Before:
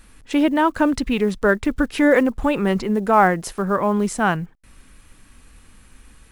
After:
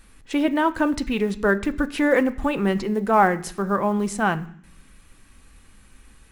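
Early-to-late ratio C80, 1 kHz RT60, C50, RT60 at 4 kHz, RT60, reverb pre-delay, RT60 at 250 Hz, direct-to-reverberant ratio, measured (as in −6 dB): 20.5 dB, 0.60 s, 18.0 dB, 0.80 s, 0.65 s, 3 ms, 0.90 s, 9.0 dB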